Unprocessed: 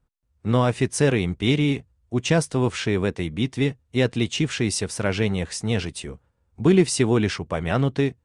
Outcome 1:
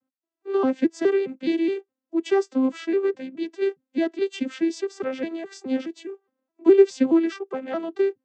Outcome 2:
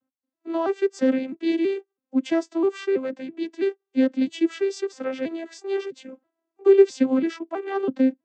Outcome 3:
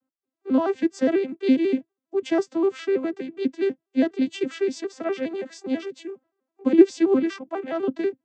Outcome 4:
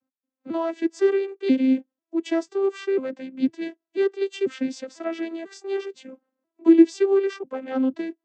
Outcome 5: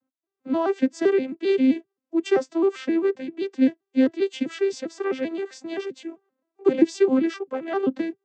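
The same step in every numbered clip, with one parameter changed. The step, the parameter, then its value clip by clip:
vocoder with an arpeggio as carrier, a note every: 209, 328, 82, 495, 131 milliseconds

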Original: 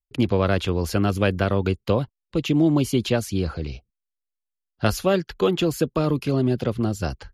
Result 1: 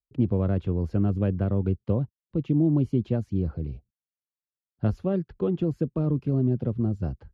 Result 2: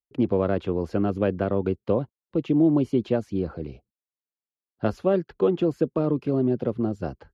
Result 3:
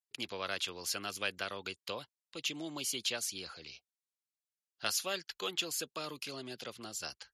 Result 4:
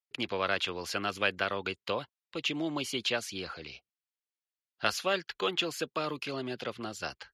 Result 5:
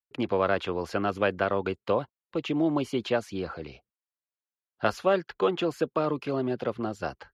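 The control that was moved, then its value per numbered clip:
resonant band-pass, frequency: 130, 360, 7,000, 2,700, 1,000 Hertz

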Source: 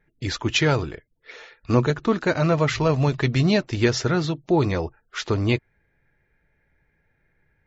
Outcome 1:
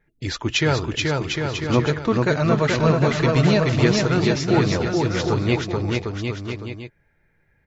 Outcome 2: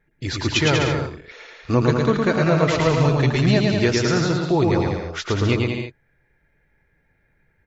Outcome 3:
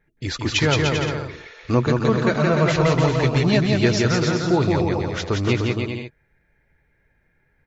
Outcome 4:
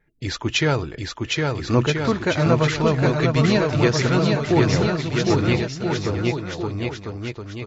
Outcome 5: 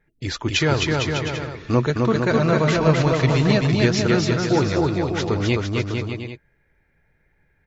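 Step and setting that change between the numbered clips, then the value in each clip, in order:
bouncing-ball delay, first gap: 430, 110, 170, 760, 260 milliseconds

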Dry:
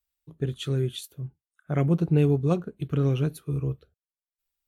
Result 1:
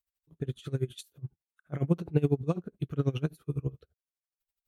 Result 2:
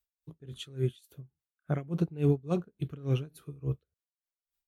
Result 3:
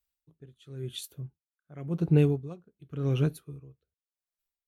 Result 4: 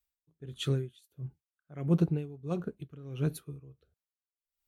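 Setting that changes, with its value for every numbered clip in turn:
tremolo with a sine in dB, speed: 12, 3.5, 0.93, 1.5 Hertz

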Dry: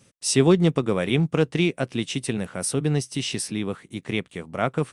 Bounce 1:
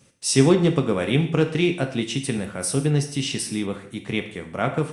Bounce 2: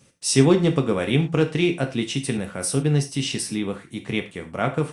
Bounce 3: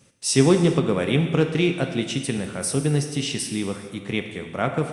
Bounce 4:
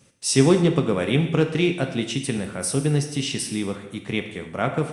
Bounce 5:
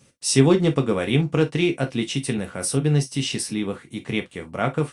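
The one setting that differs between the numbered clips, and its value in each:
reverb whose tail is shaped and stops, gate: 210, 130, 480, 320, 80 milliseconds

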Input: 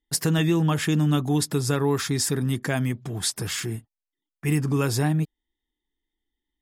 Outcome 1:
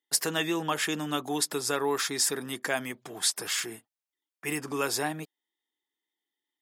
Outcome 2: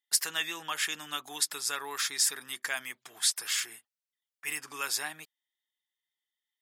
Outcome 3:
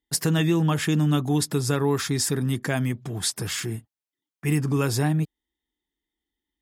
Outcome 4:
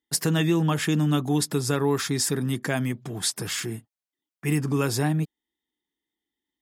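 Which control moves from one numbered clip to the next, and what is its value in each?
high-pass filter, corner frequency: 470, 1,400, 50, 130 Hertz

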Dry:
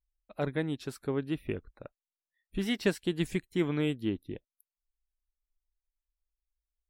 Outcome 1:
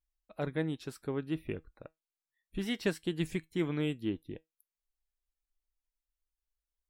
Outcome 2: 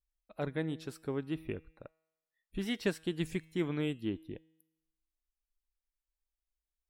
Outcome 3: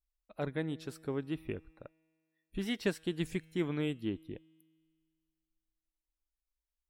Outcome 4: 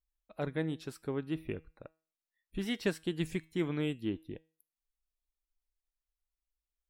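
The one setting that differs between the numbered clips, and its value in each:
tuned comb filter, decay: 0.17, 0.94, 2.1, 0.39 seconds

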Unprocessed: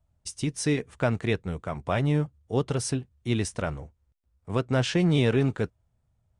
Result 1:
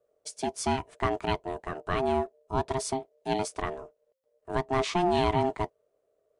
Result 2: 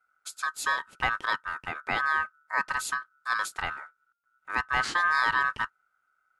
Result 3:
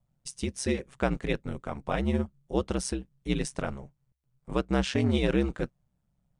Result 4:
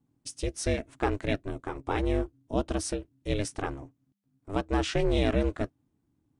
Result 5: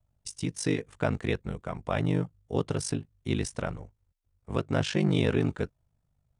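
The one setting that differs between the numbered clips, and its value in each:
ring modulation, frequency: 530, 1,400, 66, 200, 25 Hertz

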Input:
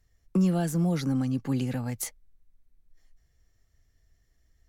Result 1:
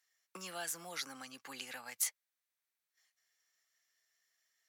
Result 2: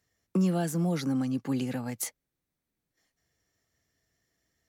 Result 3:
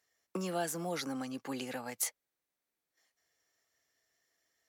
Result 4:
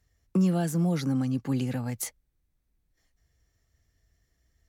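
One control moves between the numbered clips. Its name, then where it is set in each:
high-pass filter, corner frequency: 1,300, 170, 500, 44 Hertz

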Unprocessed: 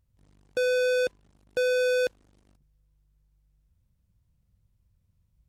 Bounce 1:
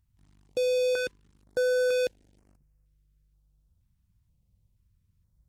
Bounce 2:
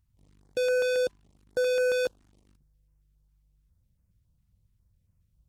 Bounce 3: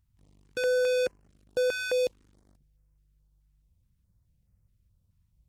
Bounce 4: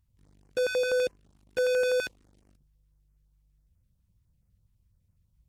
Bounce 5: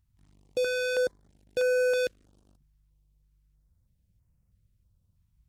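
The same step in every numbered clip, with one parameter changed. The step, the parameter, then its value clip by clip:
notch on a step sequencer, speed: 2.1, 7.3, 4.7, 12, 3.1 Hertz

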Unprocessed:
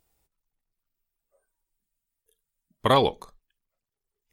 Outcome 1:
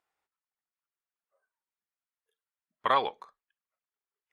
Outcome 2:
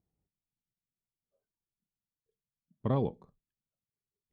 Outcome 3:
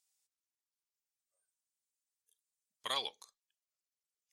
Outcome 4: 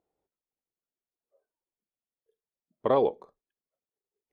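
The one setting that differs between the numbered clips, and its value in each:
resonant band-pass, frequency: 1,400, 160, 6,500, 450 Hertz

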